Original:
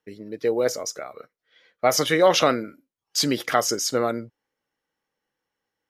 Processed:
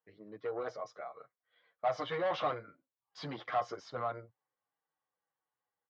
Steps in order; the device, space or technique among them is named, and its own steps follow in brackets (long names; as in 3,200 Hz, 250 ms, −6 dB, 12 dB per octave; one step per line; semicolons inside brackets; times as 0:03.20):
barber-pole flanger into a guitar amplifier (barber-pole flanger 8.1 ms −1.9 Hz; soft clipping −21.5 dBFS, distortion −8 dB; loudspeaker in its box 93–3,500 Hz, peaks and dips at 120 Hz +3 dB, 240 Hz −9 dB, 370 Hz −4 dB, 730 Hz +8 dB, 1,100 Hz +9 dB, 2,600 Hz −6 dB)
level −9 dB